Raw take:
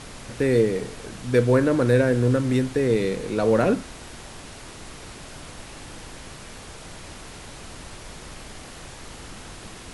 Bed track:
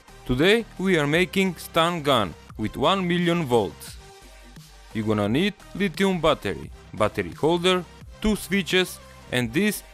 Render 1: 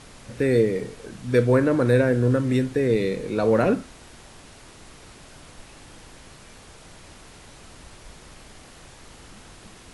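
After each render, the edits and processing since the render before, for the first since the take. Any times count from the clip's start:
noise reduction from a noise print 6 dB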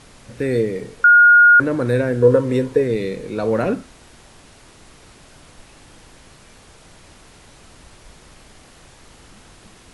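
0:01.04–0:01.60: beep over 1,430 Hz −6 dBFS
0:02.21–0:02.82: hollow resonant body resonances 480/970 Hz, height 16 dB → 13 dB, ringing for 35 ms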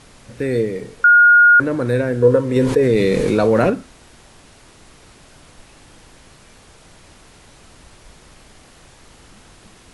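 0:02.56–0:03.70: envelope flattener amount 70%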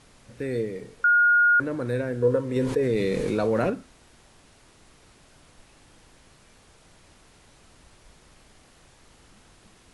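level −9 dB

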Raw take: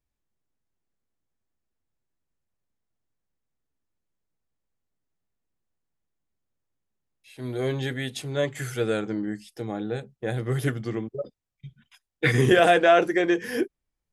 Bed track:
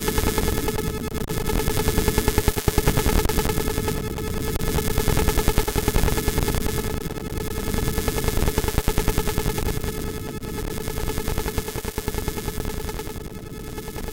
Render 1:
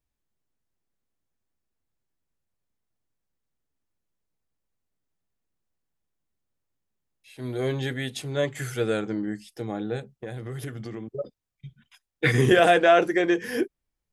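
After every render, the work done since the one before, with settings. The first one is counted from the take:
0:10.11–0:11.08: downward compressor, threshold −31 dBFS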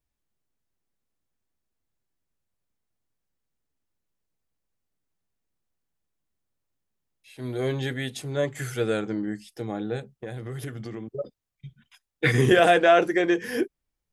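0:08.16–0:08.59: dynamic equaliser 3,000 Hz, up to −5 dB, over −44 dBFS, Q 1.1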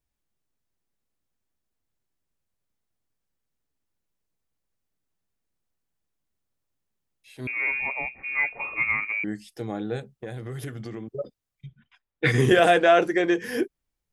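0:07.47–0:09.24: voice inversion scrambler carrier 2,600 Hz
0:11.66–0:13.27: low-pass that shuts in the quiet parts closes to 2,400 Hz, open at −15.5 dBFS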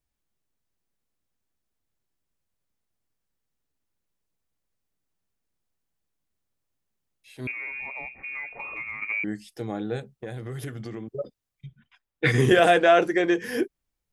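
0:07.51–0:09.02: downward compressor, threshold −32 dBFS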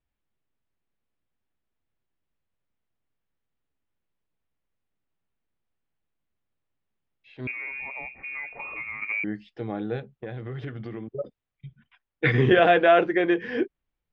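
low-pass filter 3,400 Hz 24 dB per octave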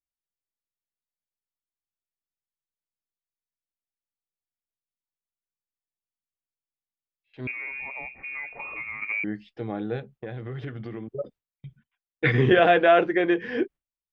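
noise gate with hold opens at −42 dBFS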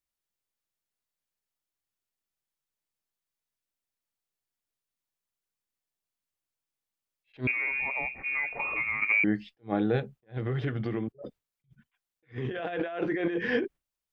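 compressor whose output falls as the input rises −28 dBFS, ratio −1
level that may rise only so fast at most 320 dB per second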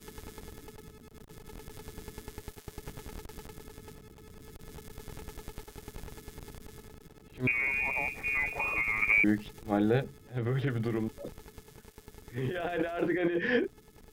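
mix in bed track −24.5 dB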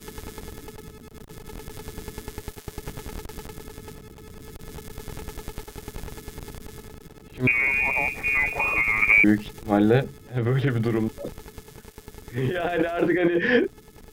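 level +8 dB

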